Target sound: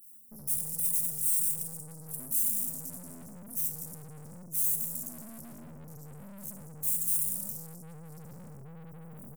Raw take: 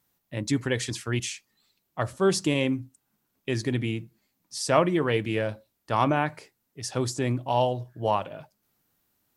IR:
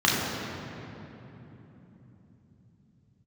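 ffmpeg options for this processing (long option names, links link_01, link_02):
-filter_complex "[0:a]tiltshelf=frequency=1100:gain=-4.5,asplit=4[link_01][link_02][link_03][link_04];[link_02]adelay=239,afreqshift=120,volume=-23dB[link_05];[link_03]adelay=478,afreqshift=240,volume=-29.6dB[link_06];[link_04]adelay=717,afreqshift=360,volume=-36.1dB[link_07];[link_01][link_05][link_06][link_07]amix=inputs=4:normalize=0,acrossover=split=330|3200[link_08][link_09][link_10];[link_08]alimiter=level_in=6dB:limit=-24dB:level=0:latency=1:release=340,volume=-6dB[link_11];[link_11][link_09][link_10]amix=inputs=3:normalize=0[link_12];[1:a]atrim=start_sample=2205,asetrate=48510,aresample=44100[link_13];[link_12][link_13]afir=irnorm=-1:irlink=0,dynaudnorm=framelen=100:gausssize=13:maxgain=4.5dB,afftfilt=real='re*(1-between(b*sr/4096,200,4000))':imag='im*(1-between(b*sr/4096,200,4000))':win_size=4096:overlap=0.75,flanger=delay=9:depth=3.8:regen=-7:speed=1:shape=triangular,asetrate=58866,aresample=44100,atempo=0.749154,areverse,acompressor=threshold=-31dB:ratio=5,areverse,aeval=exprs='(tanh(224*val(0)+0.7)-tanh(0.7))/224':channel_layout=same,aexciter=amount=9.8:drive=5.2:freq=8700,adynamicequalizer=threshold=0.00178:dfrequency=4500:dqfactor=0.7:tfrequency=4500:tqfactor=0.7:attack=5:release=100:ratio=0.375:range=3:mode=boostabove:tftype=highshelf"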